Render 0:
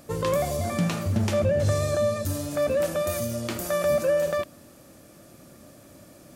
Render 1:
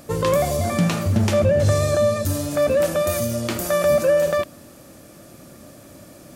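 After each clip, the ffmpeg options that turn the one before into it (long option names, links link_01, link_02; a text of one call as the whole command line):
ffmpeg -i in.wav -af "acontrast=44" out.wav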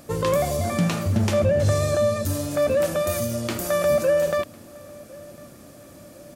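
ffmpeg -i in.wav -filter_complex "[0:a]asplit=2[link_01][link_02];[link_02]adelay=1052,lowpass=frequency=2000:poles=1,volume=-22.5dB,asplit=2[link_03][link_04];[link_04]adelay=1052,lowpass=frequency=2000:poles=1,volume=0.46,asplit=2[link_05][link_06];[link_06]adelay=1052,lowpass=frequency=2000:poles=1,volume=0.46[link_07];[link_01][link_03][link_05][link_07]amix=inputs=4:normalize=0,volume=-2.5dB" out.wav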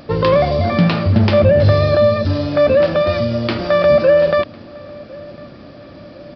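ffmpeg -i in.wav -af "aresample=11025,aresample=44100,volume=8.5dB" out.wav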